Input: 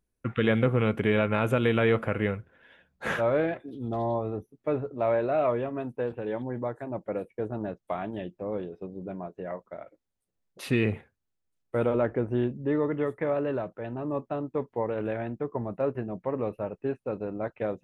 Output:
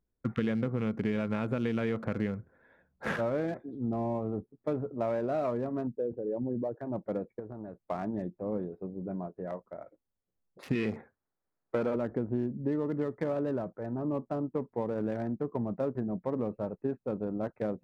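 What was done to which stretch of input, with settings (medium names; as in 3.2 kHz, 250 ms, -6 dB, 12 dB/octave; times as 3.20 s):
5.87–6.81 s: resonances exaggerated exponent 2
7.39–7.83 s: compression 12:1, threshold -35 dBFS
10.75–11.96 s: overdrive pedal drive 17 dB, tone 2.2 kHz, clips at -12 dBFS
whole clip: local Wiener filter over 15 samples; dynamic bell 210 Hz, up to +8 dB, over -42 dBFS, Q 1.4; compression, threshold -25 dBFS; trim -2 dB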